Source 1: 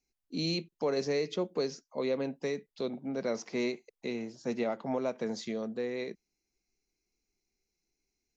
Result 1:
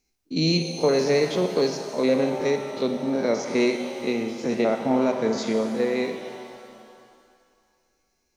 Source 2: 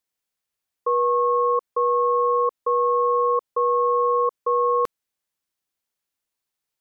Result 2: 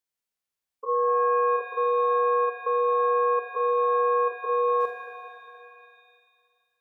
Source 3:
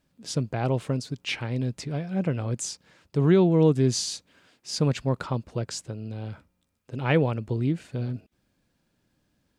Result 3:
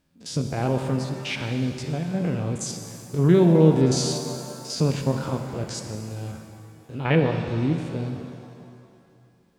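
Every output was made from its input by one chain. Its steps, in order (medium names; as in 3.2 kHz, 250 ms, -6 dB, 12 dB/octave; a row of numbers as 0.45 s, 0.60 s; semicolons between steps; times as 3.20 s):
spectrogram pixelated in time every 50 ms; pitch-shifted reverb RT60 2.2 s, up +7 st, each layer -8 dB, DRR 5.5 dB; normalise loudness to -24 LUFS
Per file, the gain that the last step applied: +10.5 dB, -4.5 dB, +2.0 dB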